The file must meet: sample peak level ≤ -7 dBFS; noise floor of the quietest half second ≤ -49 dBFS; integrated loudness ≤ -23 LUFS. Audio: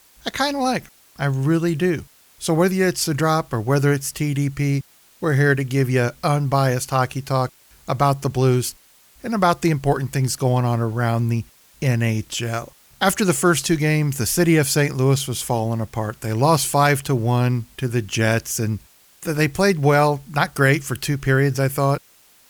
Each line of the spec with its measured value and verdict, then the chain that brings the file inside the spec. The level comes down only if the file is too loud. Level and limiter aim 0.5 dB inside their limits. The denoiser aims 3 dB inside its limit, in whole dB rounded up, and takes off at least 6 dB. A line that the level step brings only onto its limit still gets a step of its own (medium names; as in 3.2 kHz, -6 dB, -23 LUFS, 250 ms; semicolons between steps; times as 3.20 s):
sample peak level -3.5 dBFS: fail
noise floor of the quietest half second -53 dBFS: pass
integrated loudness -20.5 LUFS: fail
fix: trim -3 dB; peak limiter -7.5 dBFS